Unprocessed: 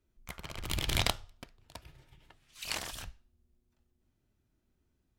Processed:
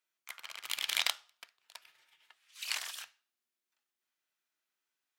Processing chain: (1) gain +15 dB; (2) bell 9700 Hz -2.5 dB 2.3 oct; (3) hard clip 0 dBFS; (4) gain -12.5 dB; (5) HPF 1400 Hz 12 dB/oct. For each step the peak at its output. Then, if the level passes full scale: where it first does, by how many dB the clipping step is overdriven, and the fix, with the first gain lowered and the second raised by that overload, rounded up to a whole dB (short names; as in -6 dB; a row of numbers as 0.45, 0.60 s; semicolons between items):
+6.5, +6.0, 0.0, -12.5, -12.0 dBFS; step 1, 6.0 dB; step 1 +9 dB, step 4 -6.5 dB